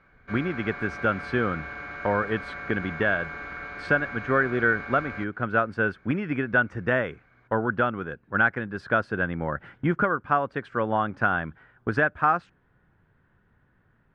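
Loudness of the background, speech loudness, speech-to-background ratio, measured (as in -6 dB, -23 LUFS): -36.5 LUFS, -26.5 LUFS, 10.0 dB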